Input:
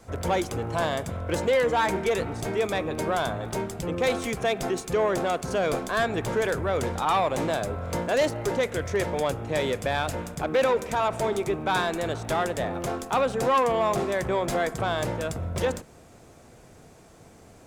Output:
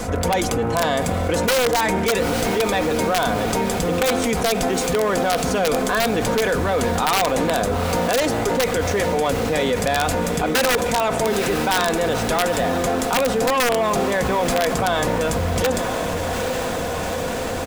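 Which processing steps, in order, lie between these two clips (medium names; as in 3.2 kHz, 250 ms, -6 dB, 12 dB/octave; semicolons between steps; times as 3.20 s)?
comb 4.1 ms, depth 50%; integer overflow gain 14 dB; echo that smears into a reverb 851 ms, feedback 58%, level -14 dB; level flattener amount 70%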